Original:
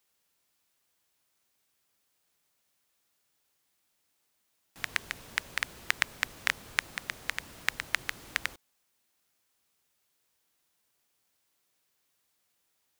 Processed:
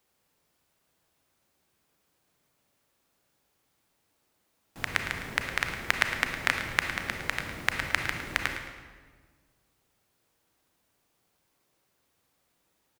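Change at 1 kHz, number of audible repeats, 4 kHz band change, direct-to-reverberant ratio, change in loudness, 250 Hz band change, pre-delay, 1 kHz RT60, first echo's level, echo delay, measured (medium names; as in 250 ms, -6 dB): +6.5 dB, 2, +2.0 dB, 4.0 dB, +3.5 dB, +11.0 dB, 30 ms, 1.4 s, -11.0 dB, 109 ms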